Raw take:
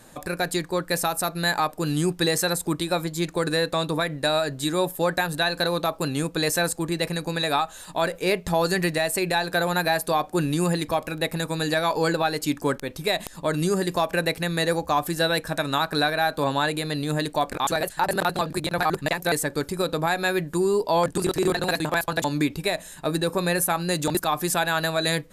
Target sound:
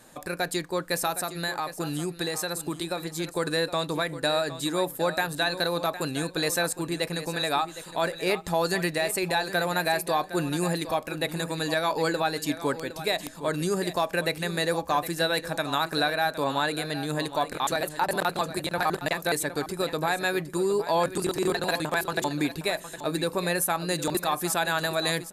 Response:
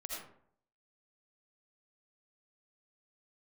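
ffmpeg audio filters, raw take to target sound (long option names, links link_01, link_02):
-filter_complex "[0:a]lowshelf=frequency=140:gain=-7,asettb=1/sr,asplit=3[link_01][link_02][link_03];[link_01]atrim=end=1.164[link_04];[link_02]atrim=start=1.16:end=3.24,asetpts=PTS-STARTPTS,afade=type=in:duration=0.004:curve=qsin,afade=type=out:start_time=2.076:duration=0.004:curve=qsin,acompressor=threshold=-24dB:ratio=6[link_05];[link_03]atrim=start=3.236[link_06];[link_04][link_05]acrossfade=duration=0.004:curve1=hsin:curve2=qsin[link_07];[link_07][link_06]acrossfade=duration=0.004:curve1=qsin:curve2=hsin,aecho=1:1:762|1524:0.224|0.0358,volume=-2.5dB"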